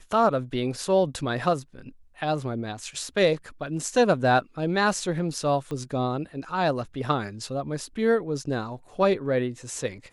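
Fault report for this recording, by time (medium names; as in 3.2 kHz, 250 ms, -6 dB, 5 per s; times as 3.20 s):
5.71 s: pop -22 dBFS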